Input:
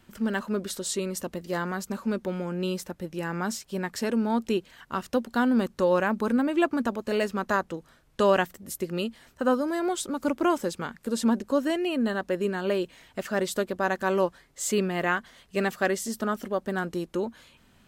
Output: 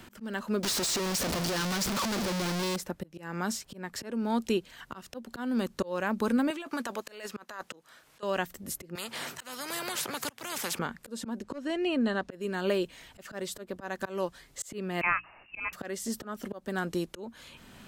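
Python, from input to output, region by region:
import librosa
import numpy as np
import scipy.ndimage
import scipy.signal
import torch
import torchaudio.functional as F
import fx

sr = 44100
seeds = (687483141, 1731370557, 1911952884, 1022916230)

y = fx.chain(x, sr, fx.clip_1bit(),
    fx.peak_eq(hz=5000.0, db=8.0, octaves=1.2), at=(0.63, 2.76))
y = fx.chain(y, sr, fx.highpass(hz=1100.0, slope=6),
    fx.over_compress(threshold_db=-36.0, ratio=-1.0), at=(6.5, 8.23))
y = fx.chain(y, sr, fx.highpass(hz=120.0, slope=24),
    fx.low_shelf(hz=340.0, db=-7.0),
    fx.spectral_comp(ratio=4.0), at=(8.95, 10.79))
y = fx.chain(y, sr, fx.air_absorb(metres=67.0),
    fx.clip_hard(threshold_db=-17.5), at=(11.43, 12.31))
y = fx.chain(y, sr, fx.freq_invert(carrier_hz=2800),
    fx.hum_notches(base_hz=60, count=5), at=(15.01, 15.73))
y = fx.auto_swell(y, sr, attack_ms=376.0)
y = fx.band_squash(y, sr, depth_pct=40)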